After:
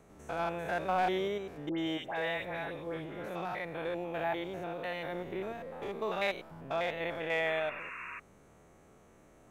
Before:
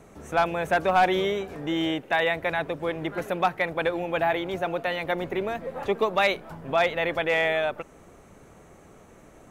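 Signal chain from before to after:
spectrum averaged block by block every 100 ms
0:01.69–0:03.29: all-pass dispersion highs, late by 93 ms, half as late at 1,600 Hz
0:07.46–0:08.20: sound drawn into the spectrogram noise 940–2,800 Hz −36 dBFS
level −7.5 dB

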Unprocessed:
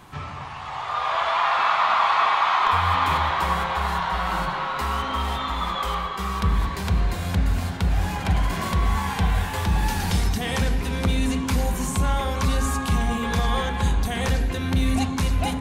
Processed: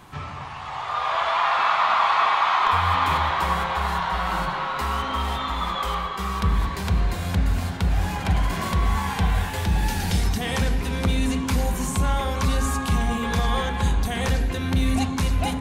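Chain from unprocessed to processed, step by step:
0:09.50–0:10.24: parametric band 1,100 Hz −7 dB 0.47 octaves

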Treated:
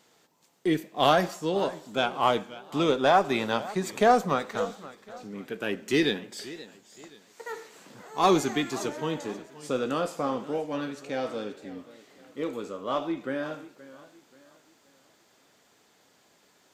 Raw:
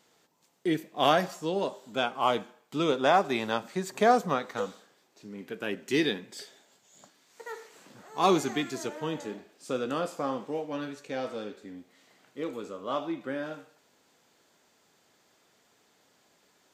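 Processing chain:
one-sided soft clipper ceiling −11 dBFS
feedback echo with a swinging delay time 528 ms, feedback 37%, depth 137 cents, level −17.5 dB
level +3 dB

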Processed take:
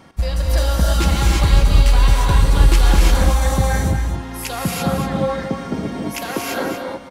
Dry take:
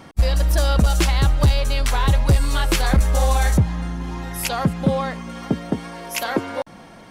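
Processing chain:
on a send: single-tap delay 234 ms −8.5 dB
on the sum: reverb whose tail is shaped and stops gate 370 ms rising, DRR −3 dB
level −3.5 dB

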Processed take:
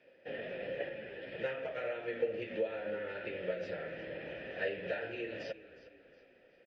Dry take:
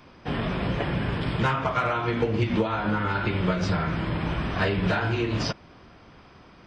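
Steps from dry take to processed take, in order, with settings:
formant filter e
echo with shifted repeats 362 ms, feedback 42%, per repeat −32 Hz, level −16.5 dB
0:00.89–0:01.32: string-ensemble chorus

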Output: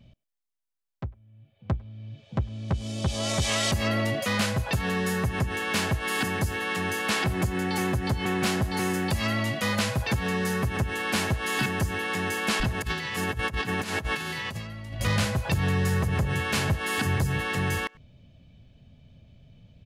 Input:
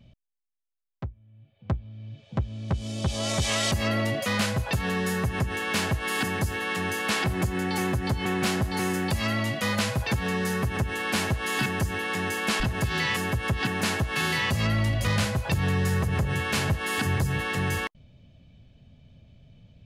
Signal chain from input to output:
0:12.82–0:15.01: compressor whose output falls as the input rises −30 dBFS, ratio −0.5
far-end echo of a speakerphone 100 ms, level −25 dB

